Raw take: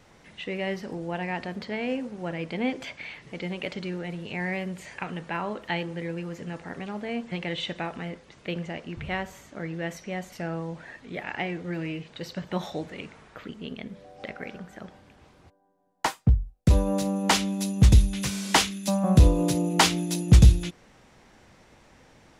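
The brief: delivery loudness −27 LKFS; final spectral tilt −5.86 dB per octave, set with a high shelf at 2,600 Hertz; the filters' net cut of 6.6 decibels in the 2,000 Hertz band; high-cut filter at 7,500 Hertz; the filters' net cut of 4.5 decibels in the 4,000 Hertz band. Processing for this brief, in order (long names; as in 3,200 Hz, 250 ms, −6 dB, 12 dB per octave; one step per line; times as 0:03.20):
low-pass filter 7,500 Hz
parametric band 2,000 Hz −8 dB
high-shelf EQ 2,600 Hz +3 dB
parametric band 4,000 Hz −5.5 dB
level +0.5 dB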